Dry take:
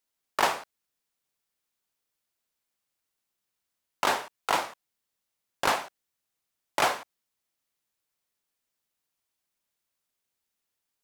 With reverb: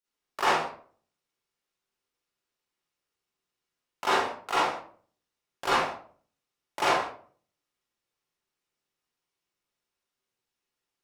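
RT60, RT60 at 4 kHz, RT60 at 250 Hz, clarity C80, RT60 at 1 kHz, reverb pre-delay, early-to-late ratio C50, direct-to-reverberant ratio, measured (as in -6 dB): 0.50 s, 0.30 s, 0.60 s, 6.0 dB, 0.45 s, 37 ms, -2.0 dB, -12.0 dB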